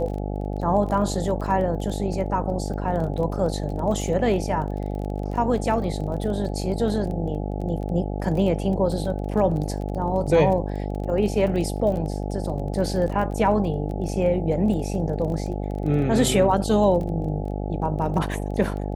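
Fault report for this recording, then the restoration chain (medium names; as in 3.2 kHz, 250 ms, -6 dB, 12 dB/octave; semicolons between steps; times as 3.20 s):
buzz 50 Hz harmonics 17 -28 dBFS
crackle 21 per s -31 dBFS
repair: de-click; de-hum 50 Hz, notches 17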